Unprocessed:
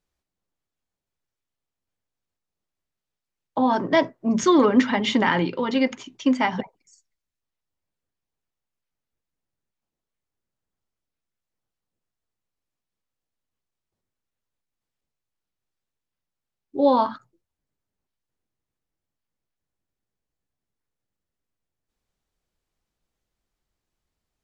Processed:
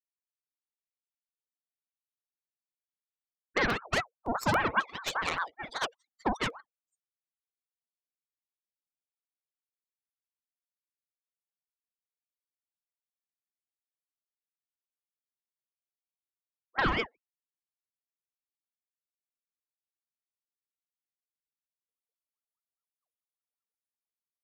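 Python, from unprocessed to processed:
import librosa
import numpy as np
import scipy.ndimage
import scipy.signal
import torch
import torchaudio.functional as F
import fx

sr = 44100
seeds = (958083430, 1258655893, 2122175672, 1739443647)

y = fx.bin_expand(x, sr, power=3.0)
y = fx.recorder_agc(y, sr, target_db=-12.5, rise_db_per_s=7.9, max_gain_db=30)
y = scipy.signal.sosfilt(scipy.signal.butter(2, 5600.0, 'lowpass', fs=sr, output='sos'), y)
y = fx.cheby_harmonics(y, sr, harmonics=(8,), levels_db=(-14,), full_scale_db=-9.0)
y = fx.buffer_crackle(y, sr, first_s=0.34, period_s=0.28, block=64, kind='repeat')
y = fx.ring_lfo(y, sr, carrier_hz=910.0, swing_pct=50, hz=5.0)
y = y * 10.0 ** (-5.5 / 20.0)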